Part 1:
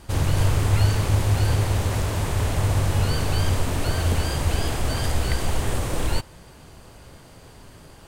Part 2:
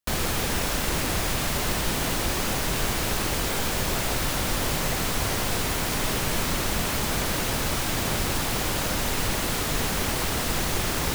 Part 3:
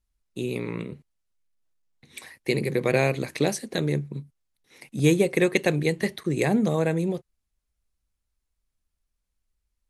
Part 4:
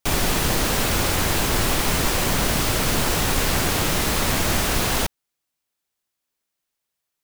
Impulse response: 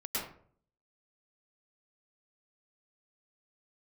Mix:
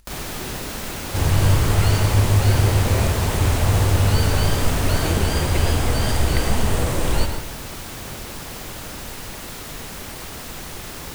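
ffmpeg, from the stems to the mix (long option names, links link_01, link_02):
-filter_complex "[0:a]adelay=1050,volume=1dB,asplit=2[link_01][link_02];[link_02]volume=-8dB[link_03];[1:a]acrusher=bits=4:mix=0:aa=0.000001,volume=-8.5dB[link_04];[2:a]volume=-10dB[link_05];[3:a]adelay=50,volume=-11dB[link_06];[4:a]atrim=start_sample=2205[link_07];[link_03][link_07]afir=irnorm=-1:irlink=0[link_08];[link_01][link_04][link_05][link_06][link_08]amix=inputs=5:normalize=0,acompressor=mode=upward:threshold=-31dB:ratio=2.5"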